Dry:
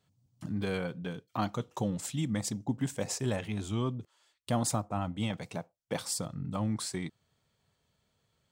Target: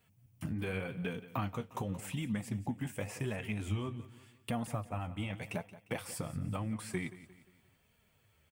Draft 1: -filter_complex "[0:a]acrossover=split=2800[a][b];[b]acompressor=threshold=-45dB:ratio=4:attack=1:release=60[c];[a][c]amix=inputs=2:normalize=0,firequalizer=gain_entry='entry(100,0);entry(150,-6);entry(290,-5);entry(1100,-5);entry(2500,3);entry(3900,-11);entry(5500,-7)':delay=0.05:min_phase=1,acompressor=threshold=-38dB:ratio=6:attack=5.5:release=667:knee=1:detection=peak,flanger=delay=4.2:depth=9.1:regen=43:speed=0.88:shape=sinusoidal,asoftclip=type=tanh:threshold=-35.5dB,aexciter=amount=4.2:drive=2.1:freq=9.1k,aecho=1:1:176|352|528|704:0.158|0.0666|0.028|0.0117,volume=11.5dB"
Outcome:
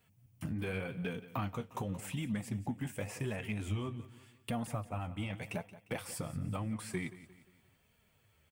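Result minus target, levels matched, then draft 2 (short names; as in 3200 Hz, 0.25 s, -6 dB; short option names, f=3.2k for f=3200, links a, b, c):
soft clip: distortion +19 dB
-filter_complex "[0:a]acrossover=split=2800[a][b];[b]acompressor=threshold=-45dB:ratio=4:attack=1:release=60[c];[a][c]amix=inputs=2:normalize=0,firequalizer=gain_entry='entry(100,0);entry(150,-6);entry(290,-5);entry(1100,-5);entry(2500,3);entry(3900,-11);entry(5500,-7)':delay=0.05:min_phase=1,acompressor=threshold=-38dB:ratio=6:attack=5.5:release=667:knee=1:detection=peak,flanger=delay=4.2:depth=9.1:regen=43:speed=0.88:shape=sinusoidal,asoftclip=type=tanh:threshold=-25dB,aexciter=amount=4.2:drive=2.1:freq=9.1k,aecho=1:1:176|352|528|704:0.158|0.0666|0.028|0.0117,volume=11.5dB"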